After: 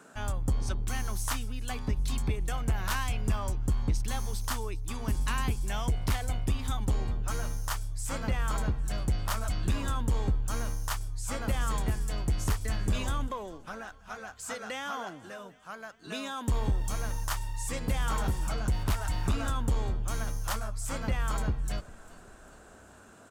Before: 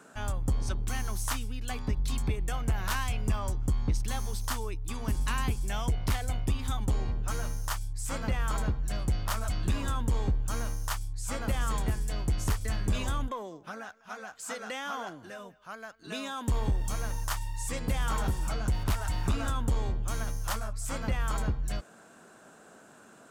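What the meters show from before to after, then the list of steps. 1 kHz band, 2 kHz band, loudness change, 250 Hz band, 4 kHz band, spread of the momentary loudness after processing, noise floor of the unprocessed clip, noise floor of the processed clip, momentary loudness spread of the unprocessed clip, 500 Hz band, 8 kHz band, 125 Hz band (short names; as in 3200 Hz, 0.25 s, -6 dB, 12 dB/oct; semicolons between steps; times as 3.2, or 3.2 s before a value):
0.0 dB, 0.0 dB, 0.0 dB, 0.0 dB, 0.0 dB, 9 LU, -55 dBFS, -53 dBFS, 8 LU, 0.0 dB, 0.0 dB, 0.0 dB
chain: frequency-shifting echo 0.399 s, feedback 58%, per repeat -35 Hz, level -22 dB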